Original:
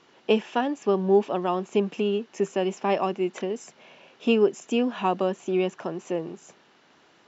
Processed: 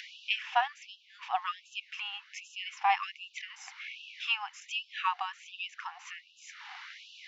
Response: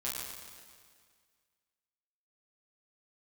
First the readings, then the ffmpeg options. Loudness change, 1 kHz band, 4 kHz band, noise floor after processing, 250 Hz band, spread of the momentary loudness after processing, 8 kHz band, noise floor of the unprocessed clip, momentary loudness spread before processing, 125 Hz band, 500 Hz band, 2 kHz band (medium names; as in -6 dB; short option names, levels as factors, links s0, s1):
-9.0 dB, -2.5 dB, +1.0 dB, -61 dBFS, under -40 dB, 17 LU, no reading, -59 dBFS, 10 LU, under -40 dB, under -25 dB, +2.0 dB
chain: -af "highpass=400,equalizer=f=430:t=q:w=4:g=-8,equalizer=f=720:t=q:w=4:g=5,equalizer=f=2100:t=q:w=4:g=7,lowpass=f=5600:w=0.5412,lowpass=f=5600:w=1.3066,acompressor=mode=upward:threshold=0.0251:ratio=2.5,afftfilt=real='re*gte(b*sr/1024,710*pow(2600/710,0.5+0.5*sin(2*PI*1.3*pts/sr)))':imag='im*gte(b*sr/1024,710*pow(2600/710,0.5+0.5*sin(2*PI*1.3*pts/sr)))':win_size=1024:overlap=0.75"